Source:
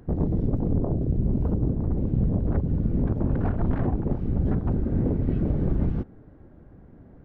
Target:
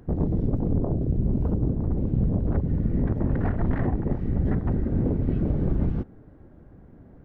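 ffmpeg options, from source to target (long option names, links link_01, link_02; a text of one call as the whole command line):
ffmpeg -i in.wav -filter_complex "[0:a]asettb=1/sr,asplit=3[link_01][link_02][link_03];[link_01]atrim=end=2.614[link_04];[link_02]atrim=start=2.61:end=4.88,asetpts=PTS-STARTPTS,afade=type=in:duration=0.004:curve=qsin,afade=type=out:start_time=2.266:duration=0.004:curve=qsin,equalizer=frequency=1900:width=4.6:gain=10[link_05];[link_03]atrim=start=4.876[link_06];[link_04][link_05]acrossfade=duration=0.004:curve1=hsin:curve2=qsin[link_07];[link_07][link_06]acrossfade=duration=0.004:curve1=qsin:curve2=hsin" out.wav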